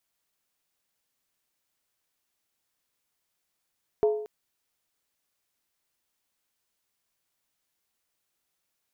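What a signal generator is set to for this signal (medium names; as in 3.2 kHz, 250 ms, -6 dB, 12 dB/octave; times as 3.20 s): skin hit length 0.23 s, lowest mode 425 Hz, decay 0.68 s, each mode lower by 10 dB, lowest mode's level -17 dB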